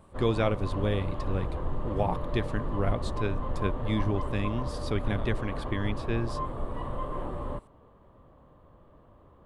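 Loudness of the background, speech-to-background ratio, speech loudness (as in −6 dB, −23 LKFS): −36.0 LKFS, 4.0 dB, −32.0 LKFS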